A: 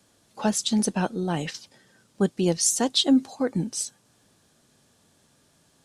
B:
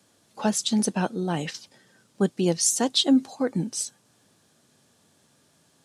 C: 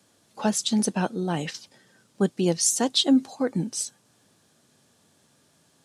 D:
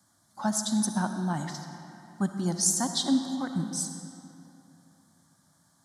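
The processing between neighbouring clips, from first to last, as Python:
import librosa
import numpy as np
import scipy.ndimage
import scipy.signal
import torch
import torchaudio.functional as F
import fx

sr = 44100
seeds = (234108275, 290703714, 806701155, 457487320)

y1 = scipy.signal.sosfilt(scipy.signal.butter(2, 93.0, 'highpass', fs=sr, output='sos'), x)
y2 = y1
y3 = fx.fixed_phaser(y2, sr, hz=1100.0, stages=4)
y3 = fx.rev_freeverb(y3, sr, rt60_s=3.0, hf_ratio=0.7, predelay_ms=20, drr_db=6.0)
y3 = F.gain(torch.from_numpy(y3), -1.0).numpy()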